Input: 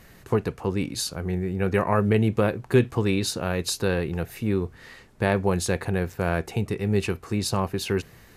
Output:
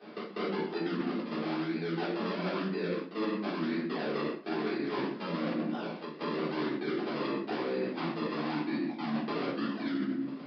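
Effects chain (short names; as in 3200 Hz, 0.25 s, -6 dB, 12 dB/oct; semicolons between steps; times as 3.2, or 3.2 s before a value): speed glide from 90% -> 70%; treble ducked by the level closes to 410 Hz, closed at -19.5 dBFS; decimation with a swept rate 40×, swing 100% 1 Hz; pre-echo 0.196 s -21 dB; transient shaper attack +7 dB, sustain -8 dB; limiter -12.5 dBFS, peak gain reduction 7.5 dB; steep high-pass 190 Hz 48 dB/oct; shoebox room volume 140 m³, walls mixed, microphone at 3.7 m; reverse; compressor 16:1, threshold -26 dBFS, peak gain reduction 21.5 dB; reverse; downsampling 11025 Hz; gain -3.5 dB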